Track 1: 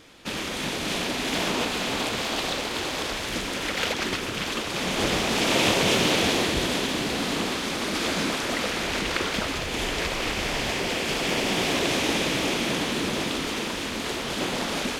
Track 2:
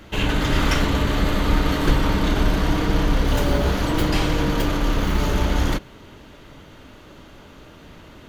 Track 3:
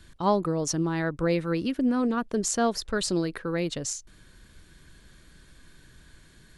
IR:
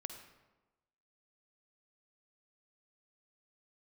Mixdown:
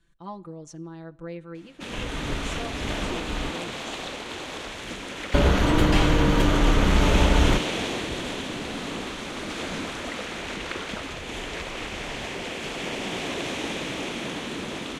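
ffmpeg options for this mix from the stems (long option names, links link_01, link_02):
-filter_complex "[0:a]adelay=1550,volume=-5.5dB[link_01];[1:a]adelay=1800,volume=1dB,asplit=3[link_02][link_03][link_04];[link_02]atrim=end=3.51,asetpts=PTS-STARTPTS,afade=type=out:start_time=3.506:duration=0.004:curve=hsin[link_05];[link_03]atrim=start=3.51:end=5.34,asetpts=PTS-STARTPTS,volume=0[link_06];[link_04]atrim=start=5.34,asetpts=PTS-STARTPTS,afade=type=in:duration=0.004:curve=hsin[link_07];[link_05][link_06][link_07]concat=n=3:v=0:a=1[link_08];[2:a]aecho=1:1:5.9:0.8,volume=-18dB,asplit=3[link_09][link_10][link_11];[link_10]volume=-12dB[link_12];[link_11]apad=whole_len=444895[link_13];[link_08][link_13]sidechaincompress=threshold=-55dB:ratio=8:attack=16:release=356[link_14];[3:a]atrim=start_sample=2205[link_15];[link_12][link_15]afir=irnorm=-1:irlink=0[link_16];[link_01][link_14][link_09][link_16]amix=inputs=4:normalize=0,lowpass=8900,equalizer=frequency=4900:width=3.2:gain=-6.5"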